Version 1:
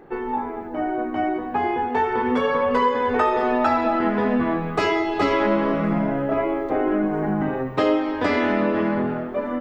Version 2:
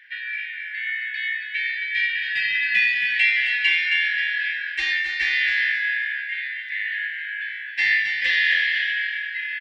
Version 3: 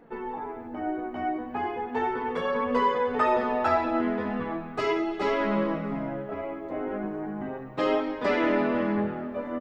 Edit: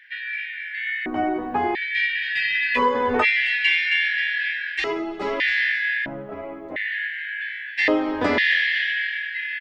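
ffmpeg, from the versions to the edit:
-filter_complex "[0:a]asplit=3[a][b][c];[2:a]asplit=2[d][e];[1:a]asplit=6[f][g][h][i][j][k];[f]atrim=end=1.062[l];[a]atrim=start=1.058:end=1.752[m];[g]atrim=start=1.748:end=2.79[n];[b]atrim=start=2.75:end=3.25[o];[h]atrim=start=3.21:end=4.842[p];[d]atrim=start=4.838:end=5.402[q];[i]atrim=start=5.398:end=6.062[r];[e]atrim=start=6.058:end=6.762[s];[j]atrim=start=6.758:end=7.882[t];[c]atrim=start=7.878:end=8.382[u];[k]atrim=start=8.378[v];[l][m]acrossfade=d=0.004:c1=hsin:c2=hsin[w];[w][n]acrossfade=d=0.004:c1=hsin:c2=hsin[x];[x][o]acrossfade=d=0.04:c1=tri:c2=tri[y];[y][p]acrossfade=d=0.04:c1=tri:c2=tri[z];[z][q]acrossfade=d=0.004:c1=hsin:c2=hsin[aa];[aa][r]acrossfade=d=0.004:c1=hsin:c2=hsin[ab];[ab][s]acrossfade=d=0.004:c1=hsin:c2=hsin[ac];[ac][t]acrossfade=d=0.004:c1=hsin:c2=hsin[ad];[ad][u]acrossfade=d=0.004:c1=hsin:c2=hsin[ae];[ae][v]acrossfade=d=0.004:c1=hsin:c2=hsin"

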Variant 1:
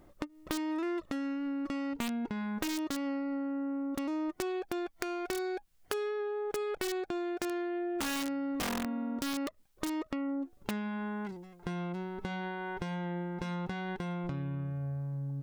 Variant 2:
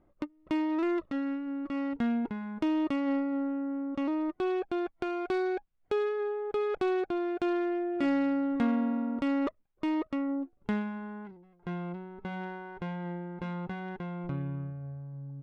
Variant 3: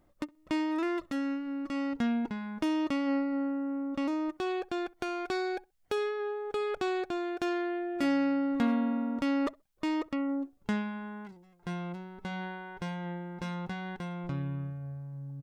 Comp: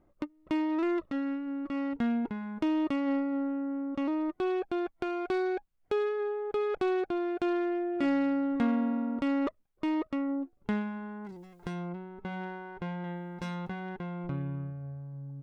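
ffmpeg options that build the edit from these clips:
-filter_complex "[1:a]asplit=3[a][b][c];[a]atrim=end=11.41[d];[0:a]atrim=start=11.17:end=11.96[e];[b]atrim=start=11.72:end=13.042[f];[2:a]atrim=start=13.038:end=13.692[g];[c]atrim=start=13.688[h];[d][e]acrossfade=d=0.24:c1=tri:c2=tri[i];[i][f]acrossfade=d=0.24:c1=tri:c2=tri[j];[j][g]acrossfade=d=0.004:c1=hsin:c2=hsin[k];[k][h]acrossfade=d=0.004:c1=hsin:c2=hsin"

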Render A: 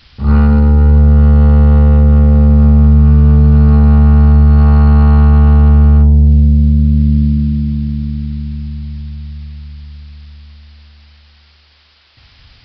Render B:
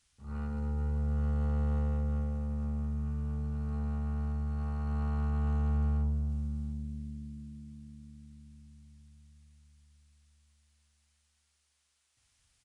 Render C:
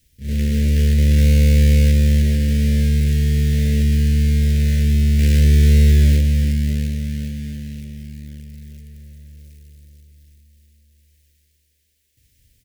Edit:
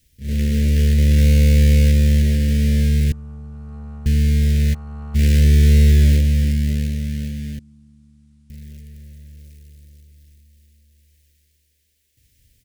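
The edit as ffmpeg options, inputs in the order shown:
-filter_complex "[1:a]asplit=3[a][b][c];[2:a]asplit=4[d][e][f][g];[d]atrim=end=3.122[h];[a]atrim=start=3.118:end=4.062[i];[e]atrim=start=4.058:end=4.75[j];[b]atrim=start=4.73:end=5.16[k];[f]atrim=start=5.14:end=7.592[l];[c]atrim=start=7.588:end=8.502[m];[g]atrim=start=8.498[n];[h][i]acrossfade=d=0.004:c1=hsin:c2=hsin[o];[o][j]acrossfade=d=0.004:c1=hsin:c2=hsin[p];[p][k]acrossfade=d=0.02:c1=tri:c2=tri[q];[q][l]acrossfade=d=0.02:c1=tri:c2=tri[r];[r][m]acrossfade=d=0.004:c1=hsin:c2=hsin[s];[s][n]acrossfade=d=0.004:c1=hsin:c2=hsin"

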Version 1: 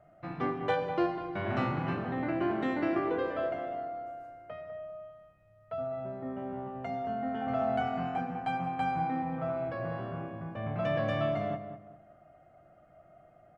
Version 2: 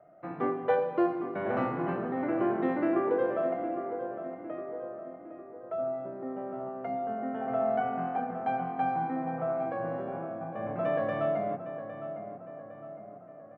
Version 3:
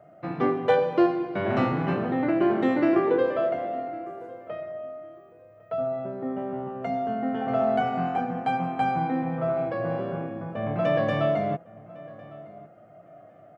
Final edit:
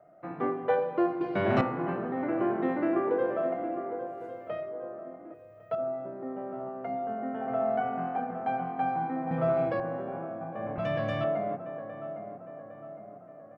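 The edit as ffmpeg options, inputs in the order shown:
-filter_complex "[2:a]asplit=4[a][b][c][d];[1:a]asplit=6[e][f][g][h][i][j];[e]atrim=end=1.212[k];[a]atrim=start=1.208:end=1.612[l];[f]atrim=start=1.608:end=4.24[m];[b]atrim=start=4:end=4.82[n];[g]atrim=start=4.58:end=5.342[o];[c]atrim=start=5.338:end=5.752[p];[h]atrim=start=5.748:end=9.312[q];[d]atrim=start=9.308:end=9.802[r];[i]atrim=start=9.798:end=10.782[s];[0:a]atrim=start=10.778:end=11.242[t];[j]atrim=start=11.238[u];[k][l]acrossfade=d=0.004:c1=hsin:c2=hsin[v];[v][m]acrossfade=d=0.004:c1=hsin:c2=hsin[w];[w][n]acrossfade=d=0.24:c1=tri:c2=tri[x];[x][o]acrossfade=d=0.24:c1=tri:c2=tri[y];[y][p]acrossfade=d=0.004:c1=hsin:c2=hsin[z];[z][q]acrossfade=d=0.004:c1=hsin:c2=hsin[aa];[aa][r]acrossfade=d=0.004:c1=hsin:c2=hsin[ab];[ab][s]acrossfade=d=0.004:c1=hsin:c2=hsin[ac];[ac][t]acrossfade=d=0.004:c1=hsin:c2=hsin[ad];[ad][u]acrossfade=d=0.004:c1=hsin:c2=hsin"

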